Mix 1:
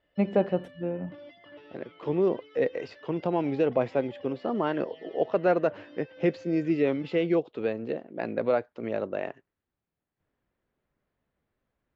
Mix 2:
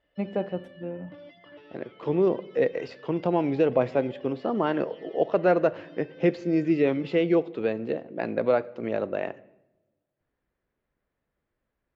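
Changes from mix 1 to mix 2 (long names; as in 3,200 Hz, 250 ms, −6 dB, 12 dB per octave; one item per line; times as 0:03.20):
first voice −6.5 dB
reverb: on, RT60 1.0 s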